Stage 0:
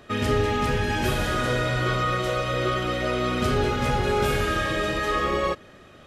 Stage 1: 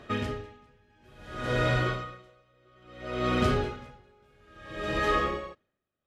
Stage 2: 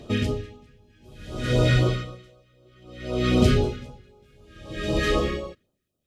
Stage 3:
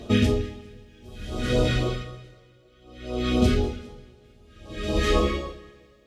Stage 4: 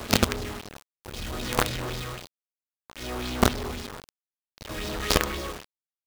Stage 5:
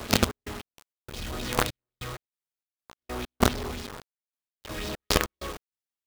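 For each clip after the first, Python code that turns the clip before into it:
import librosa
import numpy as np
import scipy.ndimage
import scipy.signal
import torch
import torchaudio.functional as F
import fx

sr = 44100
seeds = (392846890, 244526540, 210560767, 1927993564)

y1 = fx.high_shelf(x, sr, hz=6900.0, db=-11.0)
y1 = y1 * 10.0 ** (-39 * (0.5 - 0.5 * np.cos(2.0 * np.pi * 0.59 * np.arange(len(y1)) / sr)) / 20.0)
y2 = fx.phaser_stages(y1, sr, stages=2, low_hz=790.0, high_hz=1800.0, hz=3.9, feedback_pct=15)
y2 = F.gain(torch.from_numpy(y2), 8.5).numpy()
y3 = fx.rider(y2, sr, range_db=10, speed_s=0.5)
y3 = fx.rev_double_slope(y3, sr, seeds[0], early_s=0.24, late_s=2.2, knee_db=-22, drr_db=4.0)
y4 = fx.quant_companded(y3, sr, bits=2)
y4 = fx.bell_lfo(y4, sr, hz=3.8, low_hz=1000.0, high_hz=5300.0, db=7)
y4 = F.gain(torch.from_numpy(y4), -7.0).numpy()
y5 = fx.step_gate(y4, sr, bpm=97, pattern='xx.x.x.xxxx..x.', floor_db=-60.0, edge_ms=4.5)
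y5 = F.gain(torch.from_numpy(y5), -1.0).numpy()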